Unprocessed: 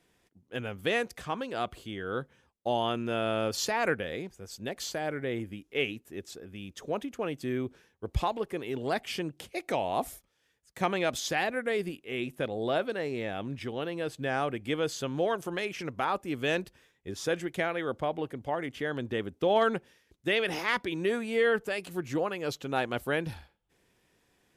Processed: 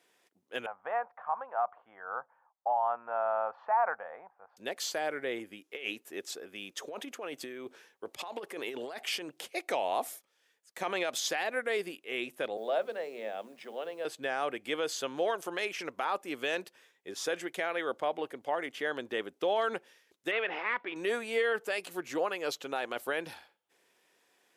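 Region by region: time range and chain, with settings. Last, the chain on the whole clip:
0:00.66–0:04.57: low-pass filter 1,300 Hz 24 dB per octave + low shelf with overshoot 540 Hz −13.5 dB, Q 3
0:05.72–0:09.48: low-shelf EQ 150 Hz −5.5 dB + compressor whose output falls as the input rises −37 dBFS
0:12.57–0:14.05: hold until the input has moved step −53.5 dBFS + Chebyshev high-pass with heavy ripple 150 Hz, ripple 9 dB + mains-hum notches 50/100/150/200/250/300/350/400/450 Hz
0:20.31–0:20.96: variable-slope delta modulation 64 kbit/s + low-pass filter 2,700 Hz 24 dB per octave + low-shelf EQ 440 Hz −6 dB
whole clip: high-pass filter 440 Hz 12 dB per octave; brickwall limiter −22 dBFS; level +1.5 dB

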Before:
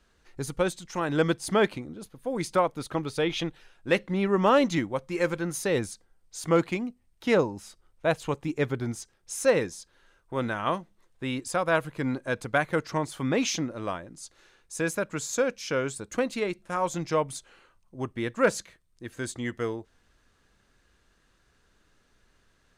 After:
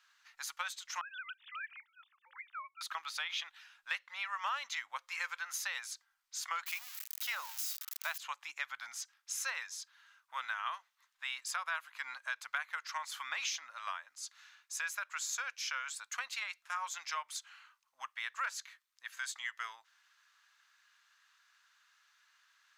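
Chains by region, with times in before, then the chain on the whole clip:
0:01.01–0:02.81: three sine waves on the formant tracks + high-pass filter 1,500 Hz + downward compressor 2 to 1, threshold −49 dBFS
0:06.66–0:08.18: spike at every zero crossing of −28 dBFS + high-pass filter 290 Hz 6 dB per octave
whole clip: inverse Chebyshev high-pass filter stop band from 420 Hz, stop band 50 dB; parametric band 9,100 Hz −12 dB 0.28 octaves; downward compressor 4 to 1, threshold −37 dBFS; level +1.5 dB

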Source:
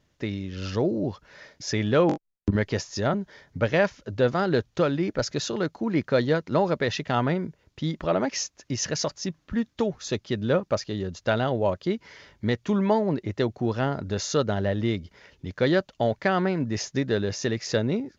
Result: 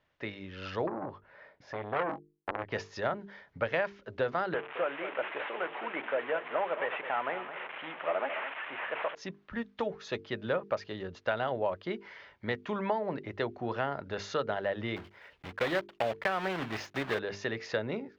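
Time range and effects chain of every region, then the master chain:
0:00.87–0:02.72: low-pass filter 1,000 Hz 6 dB per octave + double-tracking delay 21 ms −12 dB + saturating transformer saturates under 1,300 Hz
0:04.54–0:09.15: linear delta modulator 16 kbit/s, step −30.5 dBFS + high-pass filter 460 Hz + single-tap delay 213 ms −12 dB
0:14.96–0:17.19: one scale factor per block 3 bits + de-essing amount 30%
whole clip: three-way crossover with the lows and the highs turned down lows −12 dB, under 510 Hz, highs −23 dB, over 3,400 Hz; mains-hum notches 50/100/150/200/250/300/350/400/450 Hz; downward compressor, threshold −26 dBFS

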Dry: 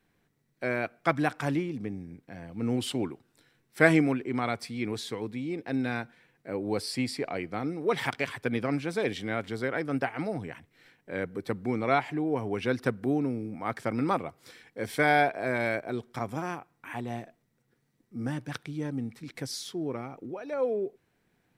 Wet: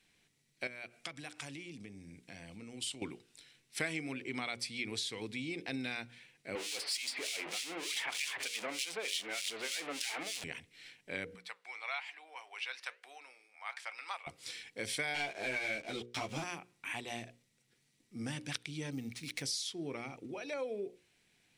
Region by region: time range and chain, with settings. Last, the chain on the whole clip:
0:00.67–0:03.02: parametric band 8,200 Hz +5 dB 1 octave + downward compressor 4 to 1, threshold −42 dBFS
0:06.55–0:10.44: converter with a step at zero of −25.5 dBFS + high-pass filter 450 Hz + two-band tremolo in antiphase 3.3 Hz, depth 100%, crossover 2,200 Hz
0:11.35–0:14.27: high-pass filter 820 Hz 24 dB per octave + parametric band 11,000 Hz −8 dB 2.1 octaves + flanger 1.1 Hz, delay 2.1 ms, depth 7.5 ms, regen −82%
0:15.14–0:16.44: running median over 5 samples + leveller curve on the samples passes 2 + string-ensemble chorus
0:18.92–0:19.42: high-shelf EQ 9,200 Hz +5 dB + bad sample-rate conversion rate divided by 3×, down none, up hold
whole clip: flat-topped bell 4,700 Hz +14 dB 2.6 octaves; mains-hum notches 60/120/180/240/300/360/420/480/540 Hz; downward compressor 4 to 1, threshold −31 dBFS; level −5 dB

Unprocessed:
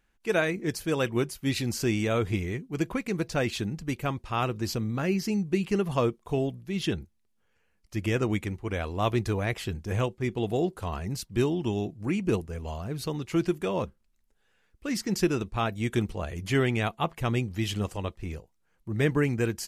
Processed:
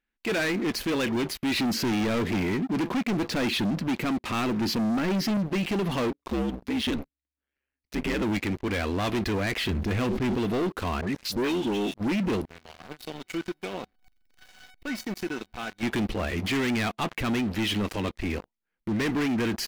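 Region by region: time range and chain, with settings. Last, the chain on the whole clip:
0:01.59–0:05.37: high-pass filter 170 Hz + low-shelf EQ 270 Hz +11.5 dB
0:06.10–0:08.22: low-shelf EQ 67 Hz −4.5 dB + ring modulation 69 Hz
0:09.69–0:10.38: low-shelf EQ 240 Hz +7 dB + level that may fall only so fast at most 86 dB per second
0:11.01–0:11.94: low-shelf EQ 240 Hz −7 dB + all-pass dispersion highs, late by 105 ms, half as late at 1,600 Hz
0:12.45–0:15.83: converter with a step at zero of −39.5 dBFS + tuned comb filter 750 Hz, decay 0.22 s, mix 90%
whole clip: octave-band graphic EQ 125/250/2,000/4,000/8,000 Hz −10/+9/+7/+6/−11 dB; leveller curve on the samples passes 5; brickwall limiter −17 dBFS; level −6 dB

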